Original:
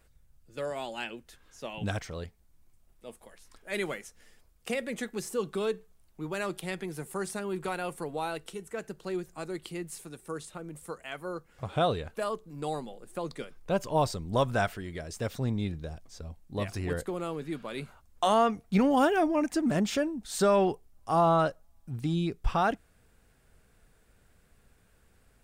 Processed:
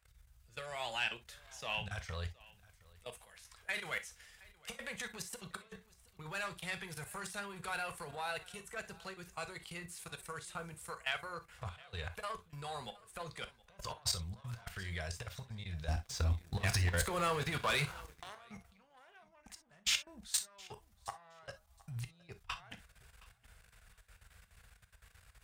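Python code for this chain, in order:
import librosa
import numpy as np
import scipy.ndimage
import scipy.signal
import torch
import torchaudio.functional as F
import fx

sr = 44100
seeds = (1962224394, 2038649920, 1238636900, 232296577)

y = fx.diode_clip(x, sr, knee_db=-25.0)
y = fx.over_compress(y, sr, threshold_db=-36.0, ratio=-0.5)
y = fx.high_shelf(y, sr, hz=3900.0, db=-10.0)
y = fx.level_steps(y, sr, step_db=20)
y = scipy.signal.sosfilt(scipy.signal.butter(2, 52.0, 'highpass', fs=sr, output='sos'), y)
y = fx.tone_stack(y, sr, knobs='10-0-10')
y = fx.echo_feedback(y, sr, ms=718, feedback_pct=17, wet_db=-22.5)
y = fx.leveller(y, sr, passes=3, at=(15.88, 18.35))
y = fx.rev_gated(y, sr, seeds[0], gate_ms=80, shape='flat', drr_db=9.5)
y = y * librosa.db_to_amplitude(11.5)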